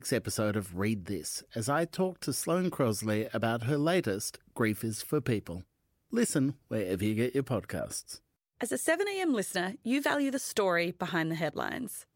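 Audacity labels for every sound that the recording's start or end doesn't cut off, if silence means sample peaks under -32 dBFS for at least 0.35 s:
6.130000	8.130000	sound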